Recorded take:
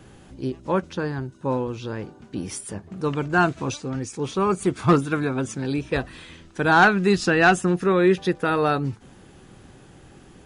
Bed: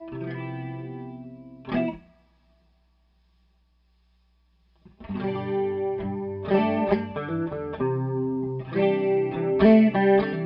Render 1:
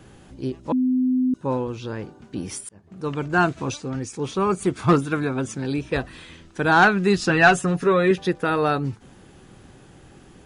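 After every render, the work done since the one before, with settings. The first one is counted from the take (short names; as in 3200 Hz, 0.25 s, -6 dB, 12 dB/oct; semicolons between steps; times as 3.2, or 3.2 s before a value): 0.72–1.34 bleep 255 Hz -17 dBFS; 2.69–3.44 fade in equal-power; 7.29–8.11 comb 7.2 ms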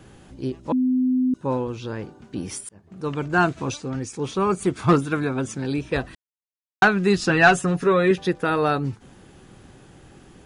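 6.15–6.82 mute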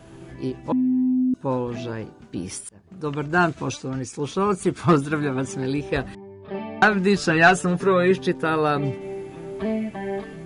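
add bed -10 dB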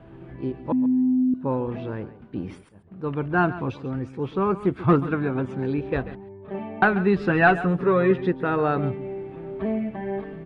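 air absorption 460 m; echo 0.138 s -15 dB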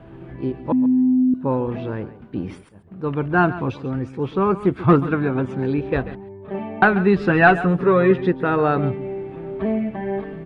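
gain +4 dB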